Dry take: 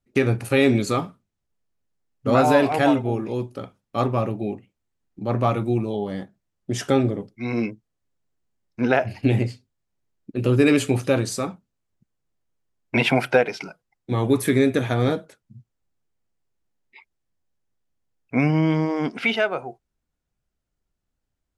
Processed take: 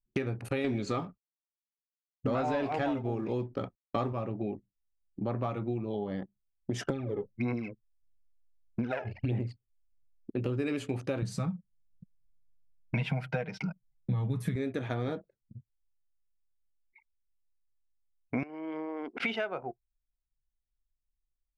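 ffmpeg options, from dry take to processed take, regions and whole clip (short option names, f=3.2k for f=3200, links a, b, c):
-filter_complex "[0:a]asettb=1/sr,asplit=3[a][b][c];[a]atrim=end=0.644[d];[b]atrim=start=0.64:end=4.13,asetpts=PTS-STARTPTS,afade=t=in:d=0.004:c=qsin,afade=t=out:st=3.486:d=0.004:c=qsin,lowpass=f=7.4k:w=0.5412,lowpass=f=7.4k:w=1.3066,acontrast=83,acrusher=bits=7:mix=0:aa=0.5[e];[c]atrim=start=4.126[f];[d][e]acrossfade=d=0.004:c1=hsin:c2=qsin[g];[g][f]acrossfade=d=0.004:c1=qsin:c2=hsin,asettb=1/sr,asplit=3[h][i][j];[h]atrim=end=6.874[k];[i]atrim=start=6.87:end=10.31,asetpts=PTS-STARTPTS,afade=t=in:d=0.004:c=qsin,afade=t=out:st=3.436:d=0.004:c=qsin,acompressor=threshold=-22dB:ratio=2.5:attack=3.2:release=140:knee=1:detection=peak,aphaser=in_gain=1:out_gain=1:delay=2.4:decay=0.66:speed=1.6:type=sinusoidal[l];[j]atrim=start=10.306[m];[k][l]acrossfade=d=0.004:c1=hsin:c2=qsin[n];[n][m]acrossfade=d=0.004:c1=qsin:c2=hsin,asettb=1/sr,asplit=3[o][p][q];[o]atrim=end=11.224[r];[p]atrim=start=11.22:end=14.56,asetpts=PTS-STARTPTS,afade=t=in:d=0.004:c=qsin,afade=t=out:st=3.336:d=0.004:c=qsin,lowshelf=f=240:t=q:w=3:g=8.5,aecho=1:1:6.4:0.42,atrim=end_sample=147294[s];[q]atrim=start=14.556[t];[r][s]acrossfade=d=0.004:c1=hsin:c2=qsin[u];[u][t]acrossfade=d=0.004:c1=qsin:c2=hsin,asettb=1/sr,asplit=3[v][w][x];[v]atrim=end=18.434[y];[w]atrim=start=18.43:end=19.2,asetpts=PTS-STARTPTS,afade=t=in:d=0.004:c=qsin,afade=t=out:st=0.766:d=0.004:c=qsin,highpass=f=310:w=0.5412,highpass=f=310:w=1.3066,acompressor=threshold=-33dB:ratio=6:attack=3.2:release=140:knee=1:detection=peak[z];[x]atrim=start=19.196[aa];[y][z]acrossfade=d=0.004:c1=hsin:c2=qsin[ab];[ab][aa]acrossfade=d=0.004:c1=qsin:c2=hsin,anlmdn=1.58,highshelf=f=6.8k:g=-11,acompressor=threshold=-30dB:ratio=6"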